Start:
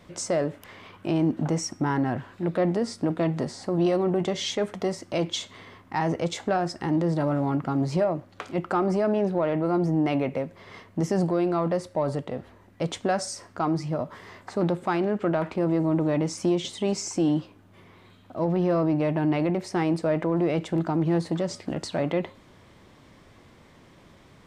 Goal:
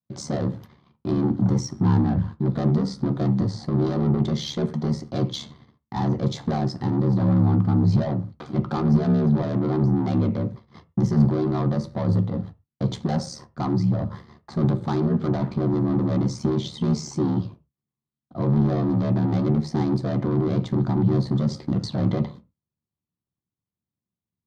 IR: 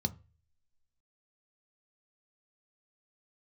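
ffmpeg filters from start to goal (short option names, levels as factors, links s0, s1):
-filter_complex "[0:a]agate=range=0.00501:threshold=0.00708:ratio=16:detection=peak,equalizer=f=6600:w=1.3:g=-4,aeval=exprs='val(0)*sin(2*PI*36*n/s)':c=same,asoftclip=type=tanh:threshold=0.0447,asplit=2[s0][s1];[1:a]atrim=start_sample=2205,afade=t=out:st=0.19:d=0.01,atrim=end_sample=8820[s2];[s1][s2]afir=irnorm=-1:irlink=0,volume=1.33[s3];[s0][s3]amix=inputs=2:normalize=0,volume=0.891"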